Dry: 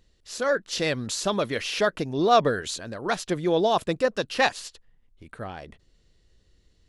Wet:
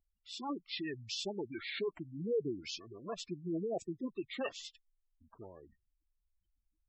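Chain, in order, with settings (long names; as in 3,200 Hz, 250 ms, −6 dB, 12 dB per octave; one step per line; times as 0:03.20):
gate on every frequency bin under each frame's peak −20 dB strong
formants moved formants −6 semitones
first-order pre-emphasis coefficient 0.8
gate on every frequency bin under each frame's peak −15 dB strong
hollow resonant body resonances 370/680/2,200/3,500 Hz, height 8 dB, ringing for 20 ms
level −4.5 dB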